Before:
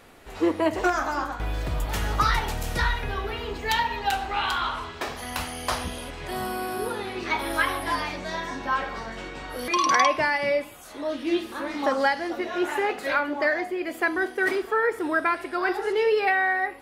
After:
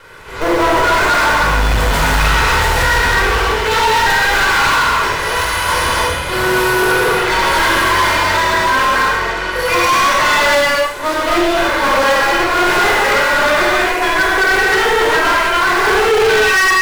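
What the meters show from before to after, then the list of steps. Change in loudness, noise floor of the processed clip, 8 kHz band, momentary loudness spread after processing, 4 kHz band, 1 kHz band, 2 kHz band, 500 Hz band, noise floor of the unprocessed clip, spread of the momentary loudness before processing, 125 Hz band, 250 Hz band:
+13.5 dB, −20 dBFS, +16.0 dB, 4 LU, +16.0 dB, +13.0 dB, +15.0 dB, +11.5 dB, −41 dBFS, 10 LU, +12.5 dB, +8.0 dB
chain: lower of the sound and its delayed copy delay 2 ms
parametric band 1,400 Hz +8 dB 1.5 octaves
in parallel at −9 dB: bit reduction 4 bits
on the sum: high-shelf EQ 11,000 Hz −5.5 dB
brickwall limiter −15 dBFS, peak gain reduction 14 dB
reverb whose tail is shaped and stops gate 350 ms flat, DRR −7 dB
gain into a clipping stage and back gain 16.5 dB
level +7 dB

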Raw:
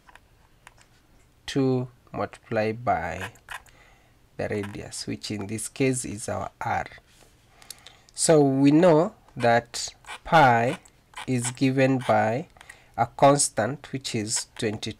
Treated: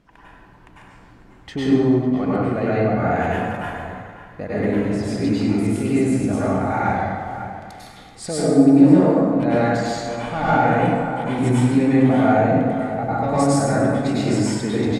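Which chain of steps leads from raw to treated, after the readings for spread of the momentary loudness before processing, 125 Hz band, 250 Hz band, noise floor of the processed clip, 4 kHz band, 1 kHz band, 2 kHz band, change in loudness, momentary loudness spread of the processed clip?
19 LU, +7.5 dB, +9.5 dB, −47 dBFS, −1.0 dB, +3.0 dB, +2.0 dB, +5.0 dB, 13 LU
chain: low-pass filter 2,200 Hz 6 dB per octave
parametric band 220 Hz +6.5 dB 1.4 octaves
brickwall limiter −17 dBFS, peak gain reduction 11 dB
slap from a distant wall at 94 metres, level −11 dB
dense smooth reverb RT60 1.8 s, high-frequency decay 0.55×, pre-delay 85 ms, DRR −9.5 dB
level −1.5 dB

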